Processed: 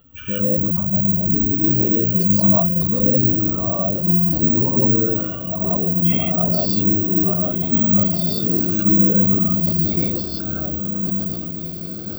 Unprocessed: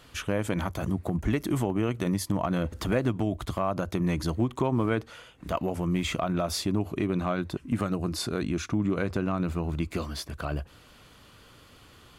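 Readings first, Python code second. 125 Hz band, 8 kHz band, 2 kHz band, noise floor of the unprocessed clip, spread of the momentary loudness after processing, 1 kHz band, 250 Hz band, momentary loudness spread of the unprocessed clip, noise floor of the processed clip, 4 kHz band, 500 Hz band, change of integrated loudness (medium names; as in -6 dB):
+8.5 dB, no reading, -3.0 dB, -54 dBFS, 9 LU, +0.5 dB, +9.5 dB, 6 LU, -29 dBFS, +3.0 dB, +5.5 dB, +13.5 dB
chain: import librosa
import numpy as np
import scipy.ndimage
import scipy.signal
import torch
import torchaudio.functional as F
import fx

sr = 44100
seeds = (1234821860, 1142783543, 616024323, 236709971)

p1 = fx.spec_expand(x, sr, power=2.6)
p2 = fx.small_body(p1, sr, hz=(210.0, 2800.0), ring_ms=20, db=9)
p3 = p2 + fx.echo_diffused(p2, sr, ms=1727, feedback_pct=55, wet_db=-9.0, dry=0)
p4 = fx.rev_gated(p3, sr, seeds[0], gate_ms=200, shape='rising', drr_db=-7.0)
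p5 = (np.kron(p4[::2], np.eye(2)[0]) * 2)[:len(p4)]
p6 = fx.sustainer(p5, sr, db_per_s=42.0)
y = p6 * librosa.db_to_amplitude(-5.5)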